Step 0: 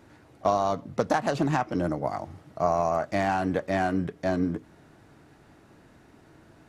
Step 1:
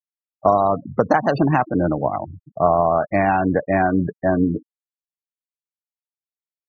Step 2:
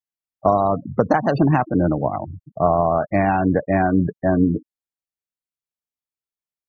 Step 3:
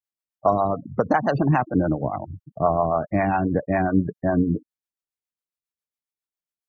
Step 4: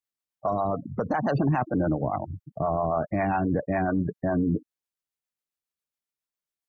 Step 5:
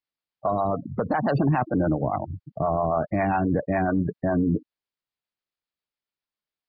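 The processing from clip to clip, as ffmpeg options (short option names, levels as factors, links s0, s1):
-af "afftfilt=real='re*gte(hypot(re,im),0.0282)':imag='im*gte(hypot(re,im),0.0282)':win_size=1024:overlap=0.75,volume=2.51"
-af "lowshelf=f=360:g=6,volume=0.75"
-filter_complex "[0:a]acrossover=split=470[s0][s1];[s0]aeval=exprs='val(0)*(1-0.7/2+0.7/2*cos(2*PI*7.3*n/s))':c=same[s2];[s1]aeval=exprs='val(0)*(1-0.7/2-0.7/2*cos(2*PI*7.3*n/s))':c=same[s3];[s2][s3]amix=inputs=2:normalize=0"
-af "alimiter=limit=0.15:level=0:latency=1:release=15"
-af "aresample=11025,aresample=44100,volume=1.26"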